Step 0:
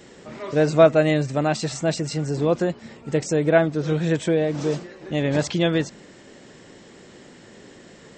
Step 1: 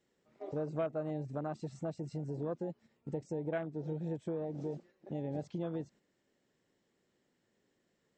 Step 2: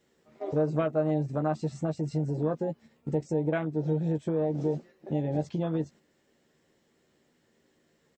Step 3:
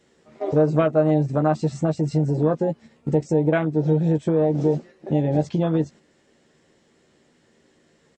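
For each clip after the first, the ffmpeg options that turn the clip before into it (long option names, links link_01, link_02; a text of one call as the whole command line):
ffmpeg -i in.wav -af "afwtdn=0.0631,agate=range=-7dB:threshold=-42dB:ratio=16:detection=peak,acompressor=threshold=-31dB:ratio=2.5,volume=-8dB" out.wav
ffmpeg -i in.wav -filter_complex "[0:a]asplit=2[link_01][link_02];[link_02]adelay=13,volume=-7dB[link_03];[link_01][link_03]amix=inputs=2:normalize=0,volume=8dB" out.wav
ffmpeg -i in.wav -af "aresample=22050,aresample=44100,volume=8.5dB" out.wav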